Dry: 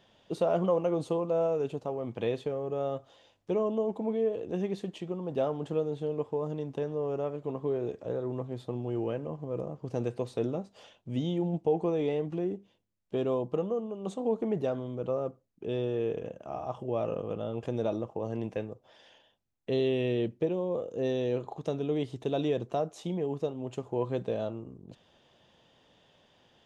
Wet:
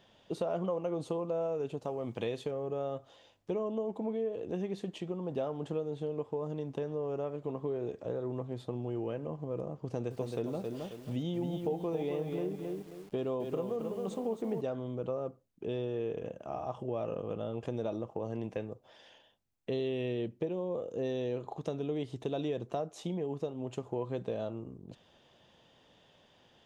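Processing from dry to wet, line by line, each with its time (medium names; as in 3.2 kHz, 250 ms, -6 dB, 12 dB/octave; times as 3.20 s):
1.82–2.51 s: treble shelf 4.1 kHz +9 dB
9.84–14.61 s: bit-crushed delay 268 ms, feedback 35%, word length 9-bit, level -6 dB
whole clip: compression 2.5:1, threshold -33 dBFS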